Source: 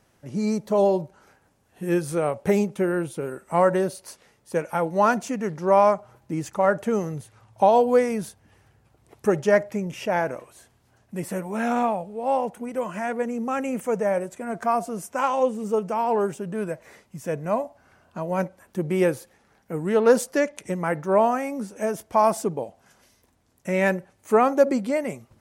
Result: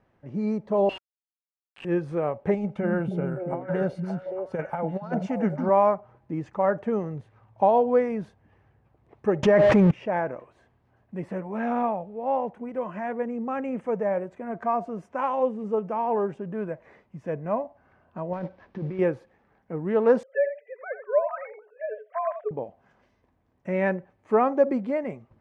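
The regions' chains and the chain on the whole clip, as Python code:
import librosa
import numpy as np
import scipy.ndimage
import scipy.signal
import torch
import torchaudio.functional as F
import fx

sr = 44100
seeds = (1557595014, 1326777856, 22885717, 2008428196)

y = fx.chain(x, sr, fx.highpass_res(hz=2800.0, q=16.0),
    fx.quant_companded(bits=2), at=(0.89, 1.85))
y = fx.chain(y, sr, fx.comb(ms=1.4, depth=0.45),
    fx.over_compress(threshold_db=-24.0, ratio=-0.5),
    fx.echo_stepped(ms=285, hz=200.0, octaves=1.4, feedback_pct=70, wet_db=0.0), at=(2.54, 5.69))
y = fx.chain(y, sr, fx.zero_step(step_db=-34.5),
    fx.env_flatten(amount_pct=100), at=(9.43, 9.91))
y = fx.chain(y, sr, fx.cvsd(bps=32000),
    fx.over_compress(threshold_db=-29.0, ratio=-1.0), at=(18.33, 18.99))
y = fx.chain(y, sr, fx.sine_speech(),
    fx.cheby_ripple_highpass(hz=410.0, ripple_db=9),
    fx.echo_single(ms=87, db=-10.0), at=(20.23, 22.51))
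y = scipy.signal.sosfilt(scipy.signal.butter(2, 1900.0, 'lowpass', fs=sr, output='sos'), y)
y = fx.notch(y, sr, hz=1400.0, q=14.0)
y = y * 10.0 ** (-2.5 / 20.0)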